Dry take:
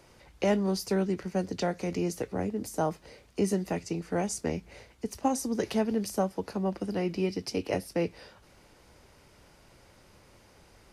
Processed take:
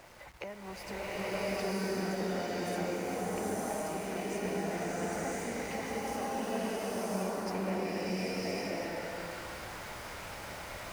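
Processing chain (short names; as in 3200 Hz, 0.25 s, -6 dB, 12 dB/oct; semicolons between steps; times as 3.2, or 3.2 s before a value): bin magnitudes rounded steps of 15 dB; band shelf 1200 Hz +9.5 dB 2.3 oct; compressor 10:1, threshold -42 dBFS, peak gain reduction 27 dB; sample gate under -54.5 dBFS; bloom reverb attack 1.08 s, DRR -11 dB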